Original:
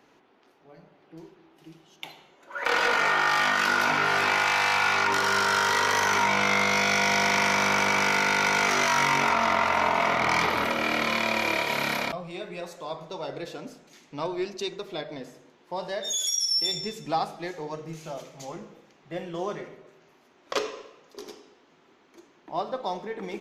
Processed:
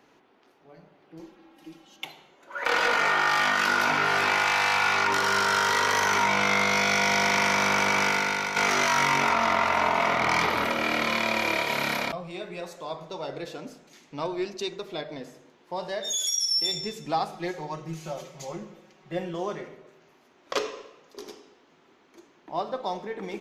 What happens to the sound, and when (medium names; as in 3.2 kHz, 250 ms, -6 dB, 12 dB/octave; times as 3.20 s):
1.19–2.05 s: comb 3.7 ms, depth 98%
8.04–8.56 s: fade out, to -8 dB
17.32–19.34 s: comb 5.4 ms